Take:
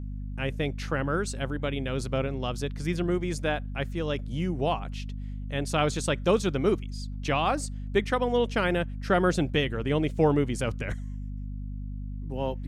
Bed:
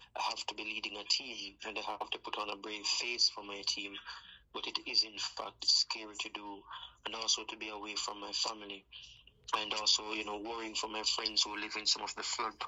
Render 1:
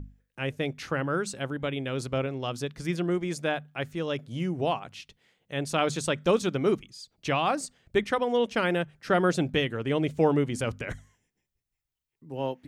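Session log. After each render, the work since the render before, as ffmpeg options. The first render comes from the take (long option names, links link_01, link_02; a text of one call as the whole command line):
ffmpeg -i in.wav -af "bandreject=frequency=50:width_type=h:width=6,bandreject=frequency=100:width_type=h:width=6,bandreject=frequency=150:width_type=h:width=6,bandreject=frequency=200:width_type=h:width=6,bandreject=frequency=250:width_type=h:width=6" out.wav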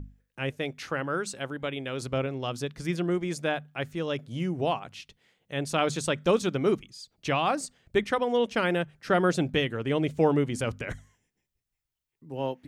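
ffmpeg -i in.wav -filter_complex "[0:a]asettb=1/sr,asplit=3[link_01][link_02][link_03];[link_01]atrim=end=0.504[link_04];[link_02]atrim=start=0.5:end=2.02,asetpts=PTS-STARTPTS,afade=type=in:duration=0.004:curve=qsin,afade=type=out:start_time=1.516:duration=0.004:curve=qsin,lowshelf=frequency=270:gain=-6.5[link_05];[link_03]atrim=start=2.016[link_06];[link_04][link_05]acrossfade=duration=0.004:curve1=hsin:curve2=qsin[link_07];[link_07][link_06]acrossfade=duration=0.004:curve1=qsin:curve2=hsin" out.wav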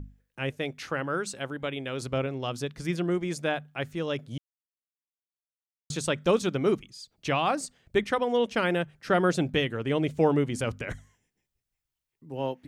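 ffmpeg -i in.wav -filter_complex "[0:a]asplit=3[link_01][link_02][link_03];[link_01]atrim=end=4.38,asetpts=PTS-STARTPTS,afade=type=out:start_time=4.376:duration=0.004:curve=hsin[link_04];[link_02]atrim=start=4.38:end=5.9,asetpts=PTS-STARTPTS,volume=0[link_05];[link_03]atrim=start=5.9,asetpts=PTS-STARTPTS,afade=type=in:duration=0.004:curve=hsin[link_06];[link_04][link_05][link_06]concat=n=3:v=0:a=1" out.wav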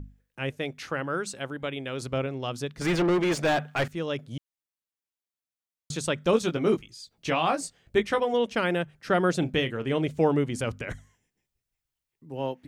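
ffmpeg -i in.wav -filter_complex "[0:a]asettb=1/sr,asplit=3[link_01][link_02][link_03];[link_01]atrim=end=2.814[link_04];[link_02]atrim=start=2.81:end=3.88,asetpts=PTS-STARTPTS,afade=type=in:duration=0.004:curve=qsin,afade=type=out:start_time=1.066:duration=0.004:curve=qsin,asplit=2[link_05][link_06];[link_06]highpass=frequency=720:poles=1,volume=28dB,asoftclip=type=tanh:threshold=-16dB[link_07];[link_05][link_07]amix=inputs=2:normalize=0,lowpass=frequency=1900:poles=1,volume=-6dB[link_08];[link_03]atrim=start=3.876[link_09];[link_04][link_08]acrossfade=duration=0.004:curve1=hsin:curve2=qsin[link_10];[link_10][link_09]acrossfade=duration=0.004:curve1=qsin:curve2=hsin,asettb=1/sr,asplit=3[link_11][link_12][link_13];[link_11]atrim=end=6.314[link_14];[link_12]atrim=start=6.31:end=8.34,asetpts=PTS-STARTPTS,afade=type=in:duration=0.004:curve=qsin,afade=type=out:start_time=2.026:duration=0.004:curve=qsin,asplit=2[link_15][link_16];[link_16]adelay=18,volume=-6dB[link_17];[link_15][link_17]amix=inputs=2:normalize=0,atrim=end_sample=89523[link_18];[link_13]atrim=start=8.336[link_19];[link_14][link_18]acrossfade=duration=0.004:curve1=hsin:curve2=qsin[link_20];[link_20][link_19]acrossfade=duration=0.004:curve1=qsin:curve2=hsin,asettb=1/sr,asplit=3[link_21][link_22][link_23];[link_21]atrim=end=9.394[link_24];[link_22]atrim=start=9.39:end=10.07,asetpts=PTS-STARTPTS,afade=type=in:duration=0.004:curve=qsin,afade=type=out:start_time=0.676:duration=0.004:curve=qsin,asplit=2[link_25][link_26];[link_26]adelay=31,volume=-12dB[link_27];[link_25][link_27]amix=inputs=2:normalize=0,atrim=end_sample=29988[link_28];[link_23]atrim=start=10.066[link_29];[link_24][link_28]acrossfade=duration=0.004:curve1=hsin:curve2=qsin[link_30];[link_30][link_29]acrossfade=duration=0.004:curve1=qsin:curve2=hsin" out.wav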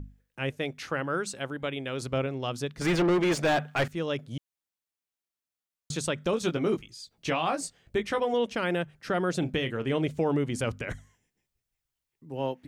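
ffmpeg -i in.wav -af "alimiter=limit=-17.5dB:level=0:latency=1:release=91" out.wav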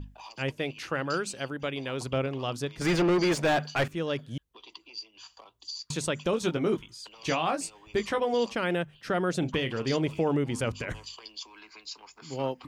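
ffmpeg -i in.wav -i bed.wav -filter_complex "[1:a]volume=-10.5dB[link_01];[0:a][link_01]amix=inputs=2:normalize=0" out.wav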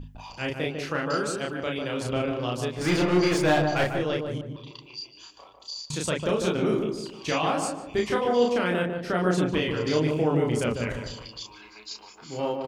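ffmpeg -i in.wav -filter_complex "[0:a]asplit=2[link_01][link_02];[link_02]adelay=33,volume=-2dB[link_03];[link_01][link_03]amix=inputs=2:normalize=0,asplit=2[link_04][link_05];[link_05]adelay=149,lowpass=frequency=1100:poles=1,volume=-3.5dB,asplit=2[link_06][link_07];[link_07]adelay=149,lowpass=frequency=1100:poles=1,volume=0.43,asplit=2[link_08][link_09];[link_09]adelay=149,lowpass=frequency=1100:poles=1,volume=0.43,asplit=2[link_10][link_11];[link_11]adelay=149,lowpass=frequency=1100:poles=1,volume=0.43,asplit=2[link_12][link_13];[link_13]adelay=149,lowpass=frequency=1100:poles=1,volume=0.43[link_14];[link_04][link_06][link_08][link_10][link_12][link_14]amix=inputs=6:normalize=0" out.wav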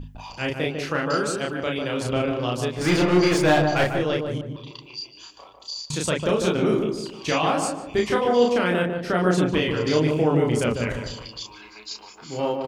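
ffmpeg -i in.wav -af "volume=3.5dB" out.wav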